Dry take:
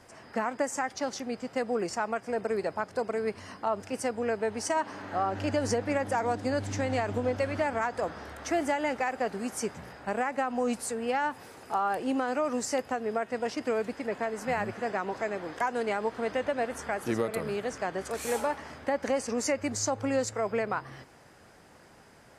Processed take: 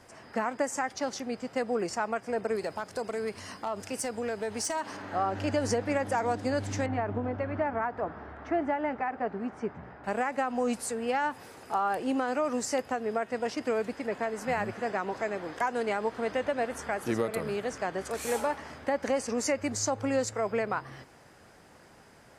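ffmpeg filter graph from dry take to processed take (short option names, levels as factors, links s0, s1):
-filter_complex "[0:a]asettb=1/sr,asplit=3[s0][s1][s2];[s0]atrim=end=2.554[s3];[s1]atrim=start=2.55:end=4.97,asetpts=PTS-STARTPTS,afade=t=in:d=0.004:c=qsin,afade=t=out:st=2.416:d=0.004:c=qsin,highshelf=f=3500:g=8.5,acompressor=threshold=0.0355:ratio=2.5:attack=3.2:release=140:knee=1:detection=peak,asoftclip=type=hard:threshold=0.0562[s4];[s2]atrim=start=4.966[s5];[s3][s4]acrossfade=d=0.004:c1=hsin:c2=qsin[s6];[s6][s5]acrossfade=d=0.004:c1=qsin:c2=hsin,asettb=1/sr,asplit=3[s7][s8][s9];[s7]atrim=end=6.864[s10];[s8]atrim=start=6.86:end=10.04,asetpts=PTS-STARTPTS,afade=t=in:d=0.004:c=qsin,afade=t=out:st=3.176:d=0.004:c=qsin,lowpass=1600,bandreject=f=520:w=7.8[s11];[s9]atrim=start=10.036[s12];[s10][s11]acrossfade=d=0.004:c1=hsin:c2=qsin[s13];[s13][s12]acrossfade=d=0.004:c1=qsin:c2=hsin"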